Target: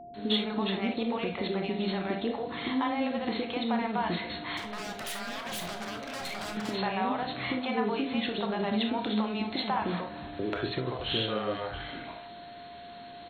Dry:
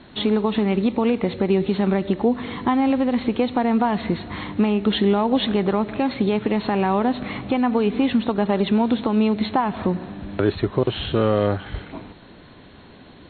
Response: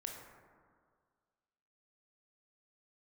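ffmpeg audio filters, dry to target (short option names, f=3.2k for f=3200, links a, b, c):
-filter_complex "[0:a]highshelf=f=3.2k:g=11,acompressor=threshold=-18dB:ratio=6,asettb=1/sr,asplit=3[a][b][c];[a]atrim=end=4.434[d];[b]atrim=start=4.43:end=6.57,asetpts=PTS-STARTPTS,afade=t=in:d=0.004:c=qsin,afade=t=out:st=2.136:d=0.004:c=qsin,aeval=exprs='0.0473*(abs(mod(val(0)/0.0473+3,4)-2)-1)':c=same[e];[c]atrim=start=6.566[f];[d][e]acrossfade=d=0.004:c1=hsin:c2=qsin[g];[g][f]acrossfade=d=0.004:c1=qsin:c2=hsin,acontrast=33,lowshelf=f=120:g=-9,bandreject=f=50:t=h:w=6,bandreject=f=100:t=h:w=6,bandreject=f=150:t=h:w=6,bandreject=f=200:t=h:w=6,bandreject=f=250:t=h:w=6,acrossover=split=490[h][i];[i]adelay=140[j];[h][j]amix=inputs=2:normalize=0[k];[1:a]atrim=start_sample=2205,atrim=end_sample=3528[l];[k][l]afir=irnorm=-1:irlink=0,aeval=exprs='val(0)+0.0126*sin(2*PI*700*n/s)':c=same,volume=-6dB"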